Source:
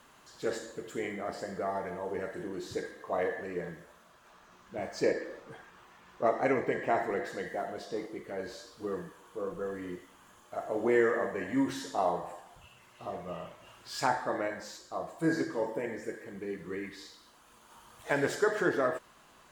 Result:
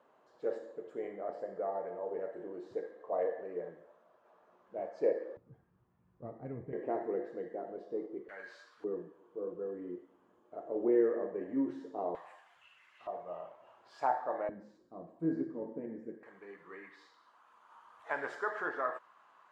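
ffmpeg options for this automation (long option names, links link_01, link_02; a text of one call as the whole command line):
ffmpeg -i in.wav -af "asetnsamples=nb_out_samples=441:pad=0,asendcmd='5.37 bandpass f 110;6.73 bandpass f 380;8.29 bandpass f 1600;8.84 bandpass f 370;12.15 bandpass f 2000;13.07 bandpass f 720;14.49 bandpass f 240;16.23 bandpass f 1100',bandpass=frequency=550:width_type=q:width=1.8:csg=0" out.wav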